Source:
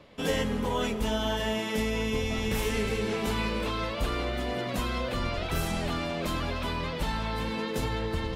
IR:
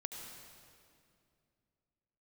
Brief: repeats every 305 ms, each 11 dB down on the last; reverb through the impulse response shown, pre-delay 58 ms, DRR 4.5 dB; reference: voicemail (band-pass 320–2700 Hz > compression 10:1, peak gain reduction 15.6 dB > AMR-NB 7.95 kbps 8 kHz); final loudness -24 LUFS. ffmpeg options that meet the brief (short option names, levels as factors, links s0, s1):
-filter_complex "[0:a]aecho=1:1:305|610|915:0.282|0.0789|0.0221,asplit=2[s0][s1];[1:a]atrim=start_sample=2205,adelay=58[s2];[s1][s2]afir=irnorm=-1:irlink=0,volume=0.708[s3];[s0][s3]amix=inputs=2:normalize=0,highpass=320,lowpass=2700,acompressor=threshold=0.01:ratio=10,volume=10.6" -ar 8000 -c:a libopencore_amrnb -b:a 7950